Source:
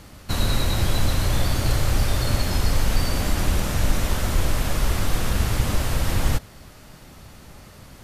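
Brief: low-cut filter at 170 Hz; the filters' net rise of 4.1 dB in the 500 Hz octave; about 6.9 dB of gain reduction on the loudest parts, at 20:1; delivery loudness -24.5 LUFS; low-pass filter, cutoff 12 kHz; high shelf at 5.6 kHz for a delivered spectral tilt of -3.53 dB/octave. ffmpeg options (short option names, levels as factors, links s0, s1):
-af "highpass=170,lowpass=12000,equalizer=f=500:t=o:g=5,highshelf=f=5600:g=6,acompressor=threshold=0.0355:ratio=20,volume=2.51"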